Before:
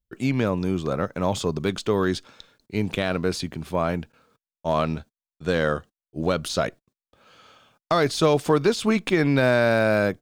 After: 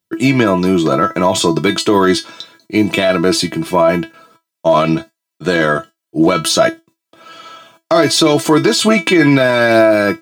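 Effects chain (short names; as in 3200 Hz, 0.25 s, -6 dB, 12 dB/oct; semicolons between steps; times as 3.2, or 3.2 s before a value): HPF 120 Hz 24 dB/oct; resonator 330 Hz, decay 0.16 s, harmonics all, mix 90%; maximiser +27.5 dB; gain -1 dB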